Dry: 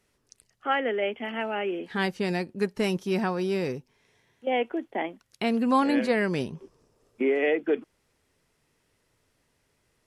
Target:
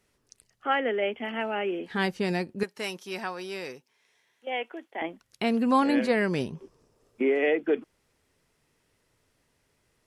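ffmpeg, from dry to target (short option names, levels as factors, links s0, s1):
-filter_complex "[0:a]asettb=1/sr,asplit=3[s0][s1][s2];[s0]atrim=end=2.634[s3];[s1]atrim=start=2.63:end=5.02,asetpts=PTS-STARTPTS,afade=t=in:d=0.004:c=qsin,afade=t=out:st=2.386:d=0.004:c=qsin,highpass=f=1100:p=1[s4];[s2]atrim=start=5.016[s5];[s3][s4]acrossfade=d=0.004:c1=hsin:c2=qsin[s6];[s6][s5]acrossfade=d=0.004:c1=qsin:c2=hsin"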